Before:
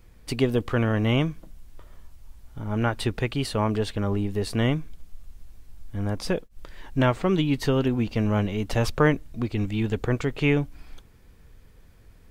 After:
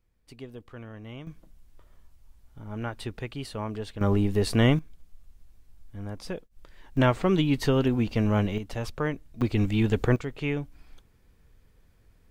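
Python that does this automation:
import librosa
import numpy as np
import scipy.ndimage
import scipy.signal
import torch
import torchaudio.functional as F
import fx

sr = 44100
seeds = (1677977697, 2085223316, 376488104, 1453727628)

y = fx.gain(x, sr, db=fx.steps((0.0, -19.5), (1.27, -9.0), (4.01, 2.5), (4.79, -9.0), (6.97, -0.5), (8.58, -9.0), (9.41, 2.0), (10.16, -7.5)))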